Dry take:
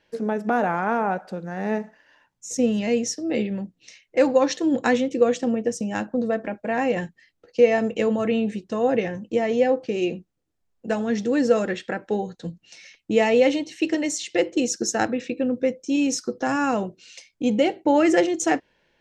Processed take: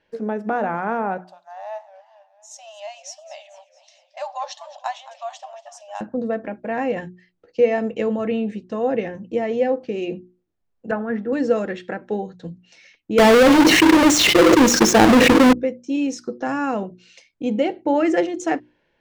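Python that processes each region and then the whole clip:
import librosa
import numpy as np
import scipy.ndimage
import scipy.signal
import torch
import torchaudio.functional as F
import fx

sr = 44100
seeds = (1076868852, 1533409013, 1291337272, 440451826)

y = fx.chain(x, sr, fx.brickwall_highpass(low_hz=570.0),
    fx.band_shelf(hz=1800.0, db=-11.0, octaves=1.1),
    fx.echo_warbled(ms=224, feedback_pct=59, rate_hz=2.8, cents=209, wet_db=-16.0), at=(1.24, 6.01))
y = fx.chain(y, sr, fx.lowpass_res(hz=1500.0, q=2.4),
    fx.band_widen(depth_pct=70), at=(10.91, 11.33))
y = fx.chain(y, sr, fx.halfwave_hold(),
    fx.env_flatten(amount_pct=100), at=(13.18, 15.53))
y = fx.lowpass(y, sr, hz=2500.0, slope=6)
y = fx.hum_notches(y, sr, base_hz=60, count=6)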